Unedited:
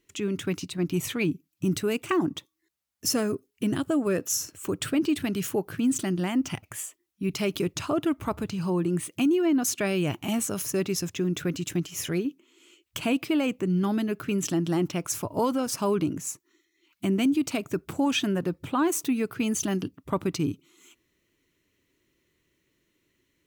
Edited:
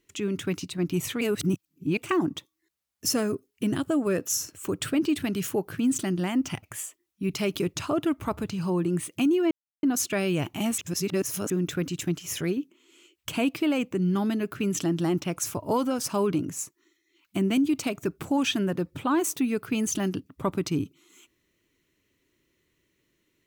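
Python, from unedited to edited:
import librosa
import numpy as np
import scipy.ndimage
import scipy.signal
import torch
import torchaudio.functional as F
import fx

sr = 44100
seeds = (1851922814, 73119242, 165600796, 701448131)

y = fx.edit(x, sr, fx.reverse_span(start_s=1.21, length_s=0.76),
    fx.insert_silence(at_s=9.51, length_s=0.32),
    fx.reverse_span(start_s=10.46, length_s=0.72), tone=tone)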